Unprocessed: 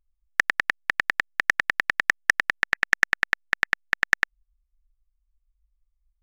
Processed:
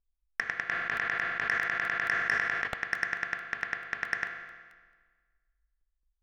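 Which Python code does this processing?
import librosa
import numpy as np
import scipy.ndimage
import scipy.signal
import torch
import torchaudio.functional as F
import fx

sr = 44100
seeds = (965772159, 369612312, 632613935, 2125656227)

y = scipy.signal.sosfilt(scipy.signal.bessel(2, 2500.0, 'lowpass', norm='mag', fs=sr, output='sos'), x)
y = fx.rev_fdn(y, sr, rt60_s=1.5, lf_ratio=1.1, hf_ratio=0.9, size_ms=13.0, drr_db=4.5)
y = 10.0 ** (-7.5 / 20.0) * np.tanh(y / 10.0 ** (-7.5 / 20.0))
y = fx.buffer_crackle(y, sr, first_s=0.97, period_s=0.22, block=64, kind='repeat')
y = fx.sustainer(y, sr, db_per_s=29.0, at=(0.68, 2.66), fade=0.02)
y = y * librosa.db_to_amplitude(-7.0)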